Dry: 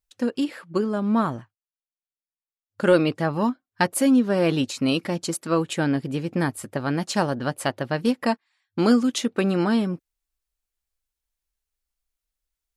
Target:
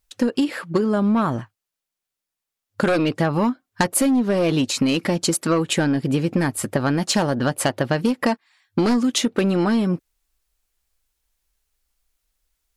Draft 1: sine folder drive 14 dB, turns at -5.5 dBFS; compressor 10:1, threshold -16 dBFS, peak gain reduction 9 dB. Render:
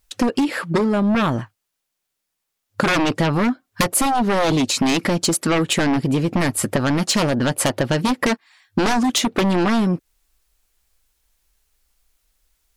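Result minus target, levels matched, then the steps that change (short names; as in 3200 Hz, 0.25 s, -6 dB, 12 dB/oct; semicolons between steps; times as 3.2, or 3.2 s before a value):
sine folder: distortion +12 dB
change: sine folder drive 7 dB, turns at -5.5 dBFS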